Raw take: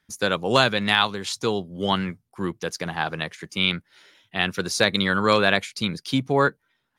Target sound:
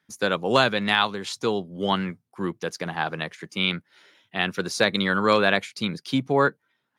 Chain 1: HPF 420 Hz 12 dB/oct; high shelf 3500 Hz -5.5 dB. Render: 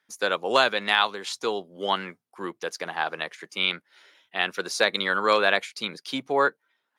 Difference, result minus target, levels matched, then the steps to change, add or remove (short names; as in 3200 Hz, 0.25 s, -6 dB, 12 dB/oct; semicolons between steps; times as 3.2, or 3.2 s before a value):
125 Hz band -13.5 dB
change: HPF 130 Hz 12 dB/oct